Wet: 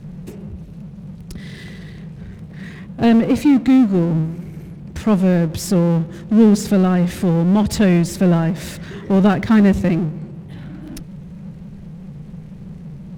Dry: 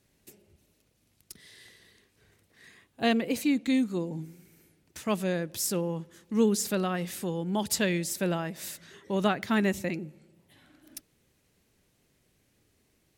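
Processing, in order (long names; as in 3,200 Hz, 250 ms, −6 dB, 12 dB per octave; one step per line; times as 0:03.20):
noise in a band 140–210 Hz −61 dBFS
RIAA equalisation playback
power curve on the samples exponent 0.7
level +5 dB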